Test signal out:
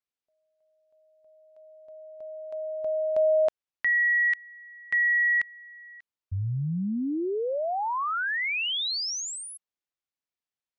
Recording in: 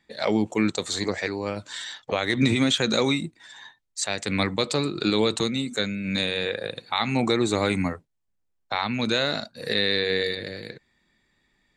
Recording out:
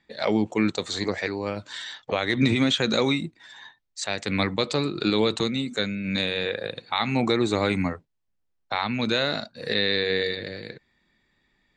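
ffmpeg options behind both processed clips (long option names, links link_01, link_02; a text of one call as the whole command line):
ffmpeg -i in.wav -af "lowpass=5600" out.wav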